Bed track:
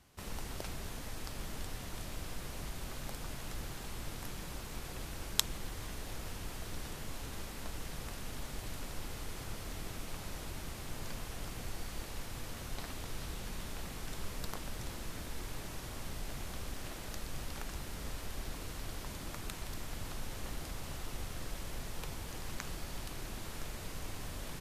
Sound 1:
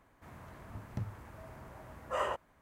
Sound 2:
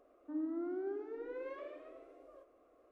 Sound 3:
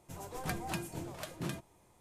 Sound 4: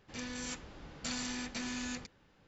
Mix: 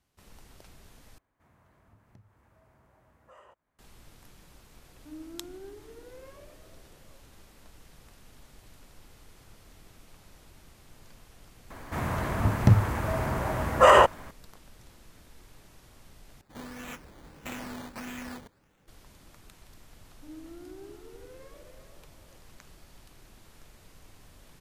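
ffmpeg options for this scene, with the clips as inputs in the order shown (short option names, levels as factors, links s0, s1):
-filter_complex "[1:a]asplit=2[s0][s1];[2:a]asplit=2[s2][s3];[0:a]volume=0.266[s4];[s0]acompressor=threshold=0.00631:ratio=2.5:attack=9.4:release=411:knee=6:detection=peak[s5];[s1]alimiter=level_in=20:limit=0.891:release=50:level=0:latency=1[s6];[4:a]acrusher=samples=13:mix=1:aa=0.000001:lfo=1:lforange=7.8:lforate=1.6[s7];[s3]aecho=1:1:378:0.422[s8];[s4]asplit=3[s9][s10][s11];[s9]atrim=end=1.184[s12];[s5]atrim=end=2.61,asetpts=PTS-STARTPTS,volume=0.251[s13];[s10]atrim=start=3.786:end=16.414[s14];[s7]atrim=end=2.47,asetpts=PTS-STARTPTS,volume=0.944[s15];[s11]atrim=start=18.876[s16];[s2]atrim=end=2.91,asetpts=PTS-STARTPTS,volume=0.531,afade=t=in:d=0.004:c=hsin,afade=t=out:st=2.906:d=0.004:c=hsin,adelay=210357S[s17];[s6]atrim=end=2.61,asetpts=PTS-STARTPTS,volume=0.562,afade=t=in:d=0.004:c=hsin,afade=t=out:st=2.606:d=0.004:c=hsin,adelay=515970S[s18];[s8]atrim=end=2.91,asetpts=PTS-STARTPTS,volume=0.422,afade=t=in:d=0.004:c=hsin,afade=t=out:st=2.906:d=0.004:c=hsin,adelay=19940[s19];[s12][s13]acrossfade=d=0.004:c1=hsin:c2=hsin[s20];[s20][s14]acrossfade=d=0.004:c1=hsin:c2=hsin[s21];[s21][s15]acrossfade=d=0.004:c1=hsin:c2=hsin[s22];[s22][s16]acrossfade=d=0.004:c1=hsin:c2=hsin[s23];[s23][s17][s18][s19]amix=inputs=4:normalize=0"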